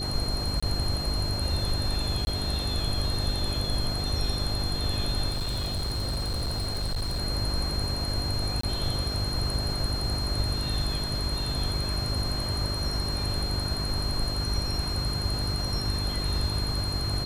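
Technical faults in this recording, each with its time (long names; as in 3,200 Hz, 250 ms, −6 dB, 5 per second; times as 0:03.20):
mains hum 50 Hz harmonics 8 −33 dBFS
whistle 4,200 Hz −32 dBFS
0:00.60–0:00.62: drop-out 25 ms
0:02.25–0:02.27: drop-out 20 ms
0:05.29–0:07.21: clipping −25.5 dBFS
0:08.61–0:08.63: drop-out 24 ms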